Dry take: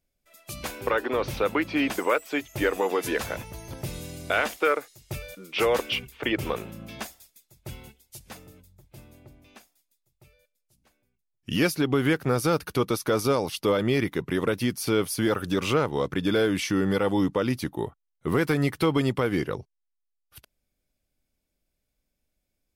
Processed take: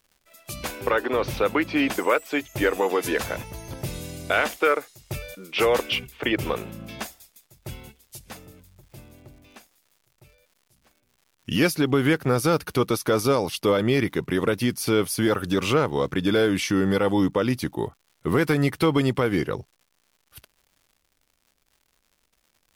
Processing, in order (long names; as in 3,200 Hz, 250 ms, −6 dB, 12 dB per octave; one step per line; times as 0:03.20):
surface crackle 180 per second −51 dBFS
level +2.5 dB